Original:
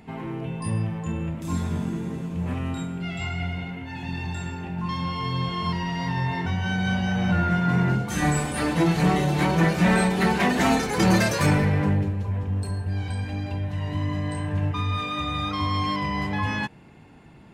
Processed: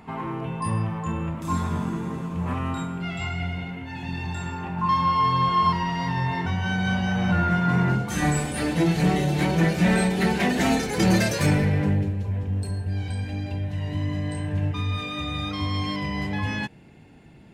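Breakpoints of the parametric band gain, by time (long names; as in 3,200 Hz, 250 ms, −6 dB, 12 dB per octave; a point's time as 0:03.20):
parametric band 1,100 Hz 0.76 octaves
0:02.93 +10.5 dB
0:03.41 +0.5 dB
0:04.19 +0.5 dB
0:04.66 +12 dB
0:05.58 +12 dB
0:06.12 +3 dB
0:07.96 +3 dB
0:08.62 −7.5 dB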